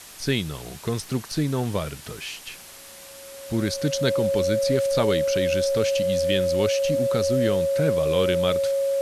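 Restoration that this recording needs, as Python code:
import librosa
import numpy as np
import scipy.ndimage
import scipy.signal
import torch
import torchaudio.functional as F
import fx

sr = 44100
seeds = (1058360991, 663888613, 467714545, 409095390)

y = fx.fix_declick_ar(x, sr, threshold=6.5)
y = fx.notch(y, sr, hz=550.0, q=30.0)
y = fx.noise_reduce(y, sr, print_start_s=2.56, print_end_s=3.06, reduce_db=27.0)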